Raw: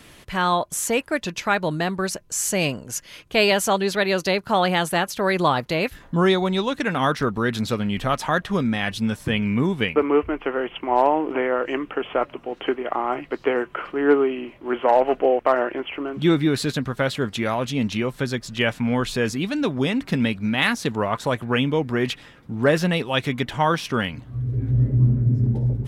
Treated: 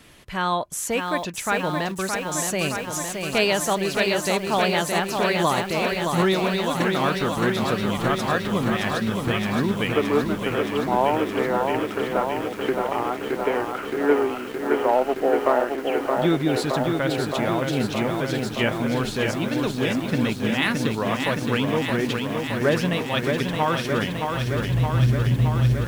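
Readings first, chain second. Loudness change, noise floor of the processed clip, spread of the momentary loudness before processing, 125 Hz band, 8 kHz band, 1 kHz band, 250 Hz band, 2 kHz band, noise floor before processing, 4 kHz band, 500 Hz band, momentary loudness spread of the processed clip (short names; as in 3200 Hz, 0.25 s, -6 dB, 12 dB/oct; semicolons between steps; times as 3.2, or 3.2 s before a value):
-0.5 dB, -32 dBFS, 8 LU, -1.0 dB, -0.5 dB, -0.5 dB, -0.5 dB, -0.5 dB, -48 dBFS, -0.5 dB, -0.5 dB, 5 LU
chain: lo-fi delay 0.619 s, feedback 80%, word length 7-bit, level -4.5 dB; gain -3 dB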